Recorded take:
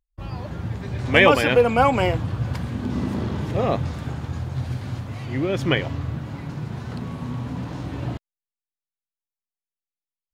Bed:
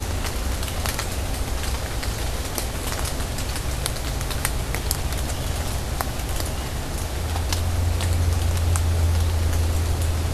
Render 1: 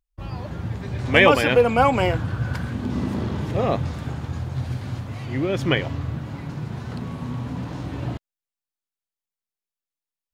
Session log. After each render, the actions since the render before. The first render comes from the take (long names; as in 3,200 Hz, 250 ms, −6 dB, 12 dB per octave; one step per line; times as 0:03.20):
0:02.10–0:02.73: parametric band 1,500 Hz +10.5 dB 0.25 octaves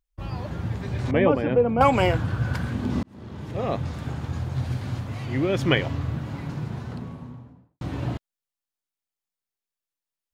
0:01.11–0:01.81: resonant band-pass 210 Hz, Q 0.58
0:03.03–0:04.71: fade in equal-power
0:06.47–0:07.81: fade out and dull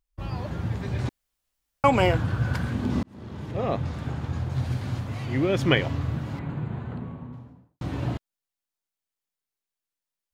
0:01.09–0:01.84: fill with room tone
0:03.46–0:04.50: high-shelf EQ 5,700 Hz −6 dB
0:06.39–0:07.33: moving average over 8 samples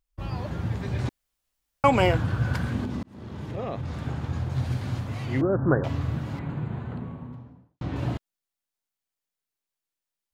0:02.84–0:03.94: downward compressor, threshold −27 dBFS
0:05.41–0:05.84: Butterworth low-pass 1,600 Hz 96 dB per octave
0:07.35–0:07.96: high-frequency loss of the air 100 metres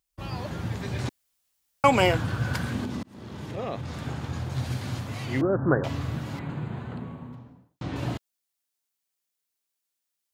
high-pass filter 110 Hz 6 dB per octave
high-shelf EQ 3,200 Hz +7.5 dB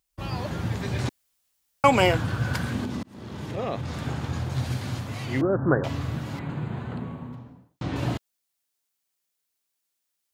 speech leveller within 3 dB 2 s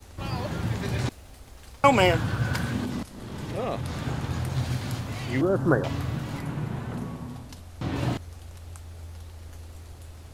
mix in bed −21 dB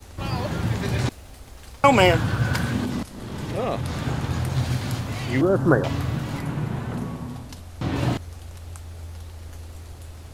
level +4 dB
brickwall limiter −3 dBFS, peak gain reduction 2.5 dB